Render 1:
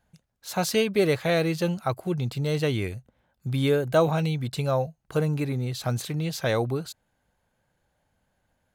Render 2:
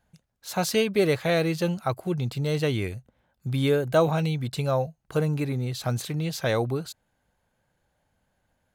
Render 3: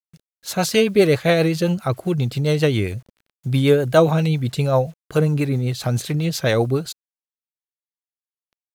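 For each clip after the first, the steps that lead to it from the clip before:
no audible change
bit crusher 10-bit; rotary cabinet horn 7.5 Hz; trim +8.5 dB

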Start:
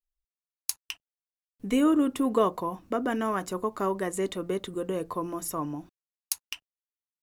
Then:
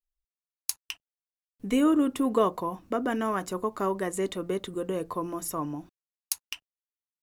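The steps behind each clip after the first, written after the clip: no audible change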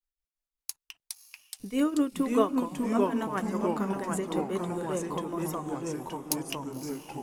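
tremolo triangle 5.1 Hz, depth 90%; echo that smears into a reverb 557 ms, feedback 54%, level -14 dB; ever faster or slower copies 328 ms, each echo -2 st, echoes 3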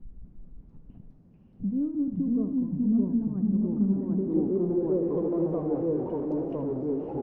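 jump at every zero crossing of -29 dBFS; low-pass sweep 200 Hz -> 490 Hz, 3.51–5.39 s; on a send: delay 78 ms -11 dB; on the sum: trim -2.5 dB

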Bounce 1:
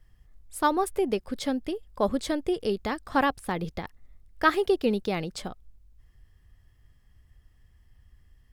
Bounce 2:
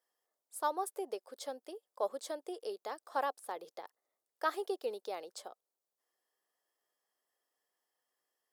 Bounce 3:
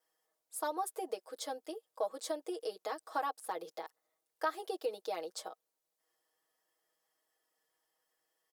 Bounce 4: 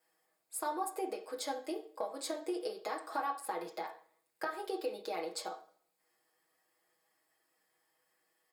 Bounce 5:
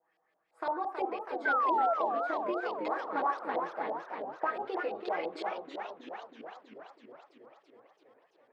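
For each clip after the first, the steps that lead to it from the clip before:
high-pass 480 Hz 24 dB/octave; peaking EQ 2.3 kHz -12.5 dB 1.6 oct; trim -5.5 dB
comb 6.3 ms, depth 97%; compression 2.5:1, threshold -34 dBFS, peak gain reduction 9 dB; vibrato 0.62 Hz 5.5 cents; trim +1 dB
compression 4:1, threshold -39 dBFS, peak gain reduction 10 dB; reverberation RT60 0.50 s, pre-delay 3 ms, DRR 2 dB; trim +3 dB
LFO low-pass saw up 5.9 Hz 630–3500 Hz; painted sound fall, 1.45–1.94 s, 640–1600 Hz -28 dBFS; modulated delay 328 ms, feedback 68%, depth 219 cents, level -6 dB

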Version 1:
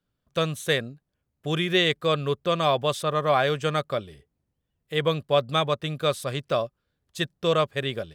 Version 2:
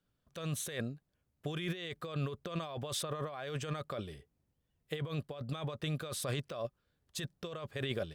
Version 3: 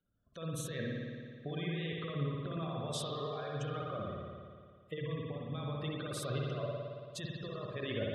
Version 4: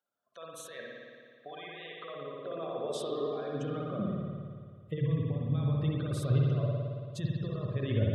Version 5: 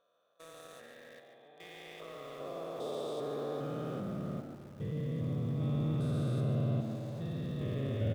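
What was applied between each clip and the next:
compressor with a negative ratio -31 dBFS, ratio -1; trim -7.5 dB
spectral gate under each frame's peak -20 dB strong; Bessel low-pass 11 kHz; spring tank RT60 2 s, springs 55 ms, chirp 40 ms, DRR -2.5 dB; trim -3 dB
bass shelf 430 Hz +11.5 dB; feedback comb 430 Hz, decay 0.72 s, mix 30%; high-pass sweep 810 Hz -> 91 Hz, 1.96–5.08 s
spectrogram pixelated in time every 400 ms; in parallel at -3 dB: small samples zeroed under -43 dBFS; on the sum: frequency-shifting echo 144 ms, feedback 34%, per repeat +92 Hz, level -9 dB; trim -6.5 dB

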